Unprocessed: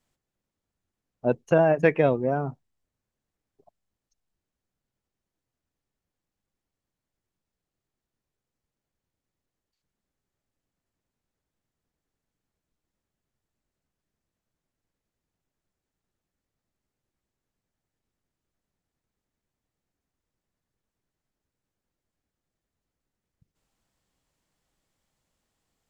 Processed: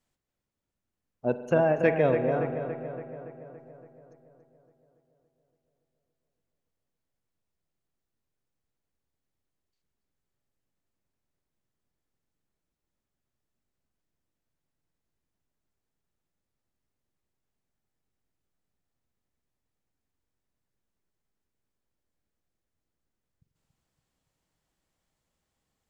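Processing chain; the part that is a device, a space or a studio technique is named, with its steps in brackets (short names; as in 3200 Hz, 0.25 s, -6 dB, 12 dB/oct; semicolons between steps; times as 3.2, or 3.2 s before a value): dub delay into a spring reverb (darkening echo 0.283 s, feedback 62%, low-pass 3200 Hz, level -8.5 dB; spring tank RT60 2 s, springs 45 ms, chirp 25 ms, DRR 10.5 dB); gain -3.5 dB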